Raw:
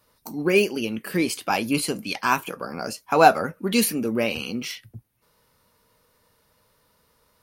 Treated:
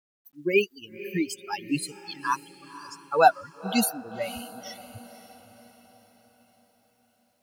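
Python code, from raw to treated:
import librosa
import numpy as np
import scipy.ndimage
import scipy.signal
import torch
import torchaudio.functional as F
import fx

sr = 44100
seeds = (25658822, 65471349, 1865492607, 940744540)

y = fx.bin_expand(x, sr, power=3.0)
y = fx.echo_diffused(y, sr, ms=531, feedback_pct=49, wet_db=-15.0)
y = fx.quant_dither(y, sr, seeds[0], bits=12, dither='none')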